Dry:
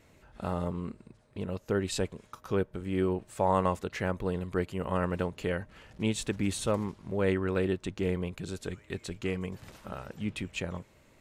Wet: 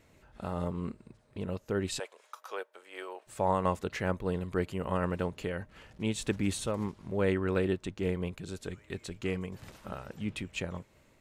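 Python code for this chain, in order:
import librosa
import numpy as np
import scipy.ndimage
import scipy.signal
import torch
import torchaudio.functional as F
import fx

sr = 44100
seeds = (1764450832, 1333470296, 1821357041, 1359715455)

y = fx.highpass(x, sr, hz=570.0, slope=24, at=(1.98, 3.26), fade=0.02)
y = fx.am_noise(y, sr, seeds[0], hz=5.7, depth_pct=55)
y = y * 10.0 ** (1.5 / 20.0)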